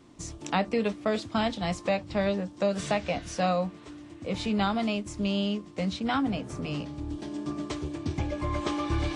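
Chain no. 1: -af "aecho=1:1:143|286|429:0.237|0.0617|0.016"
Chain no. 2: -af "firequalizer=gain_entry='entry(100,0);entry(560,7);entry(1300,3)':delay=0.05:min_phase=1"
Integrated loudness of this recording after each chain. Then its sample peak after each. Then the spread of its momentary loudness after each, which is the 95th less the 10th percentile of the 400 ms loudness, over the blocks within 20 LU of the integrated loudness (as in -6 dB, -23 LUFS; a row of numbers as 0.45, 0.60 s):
-30.0, -26.0 LUFS; -13.0, -9.0 dBFS; 8, 10 LU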